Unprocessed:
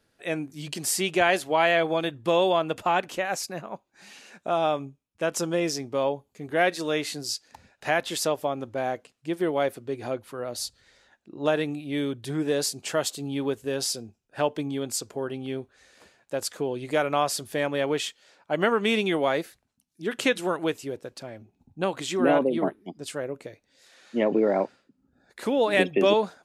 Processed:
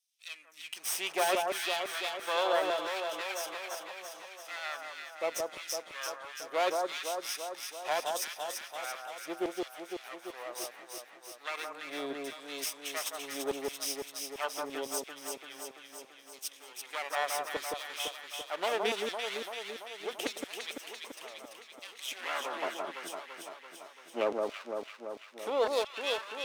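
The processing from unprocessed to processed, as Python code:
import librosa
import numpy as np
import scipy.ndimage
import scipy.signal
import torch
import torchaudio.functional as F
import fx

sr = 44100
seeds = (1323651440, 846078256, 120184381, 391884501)

y = fx.lower_of_two(x, sr, delay_ms=0.33)
y = fx.filter_lfo_highpass(y, sr, shape='saw_down', hz=0.74, low_hz=390.0, high_hz=5500.0, q=1.1)
y = fx.echo_alternate(y, sr, ms=169, hz=1400.0, feedback_pct=79, wet_db=-2.5)
y = F.gain(torch.from_numpy(y), -5.5).numpy()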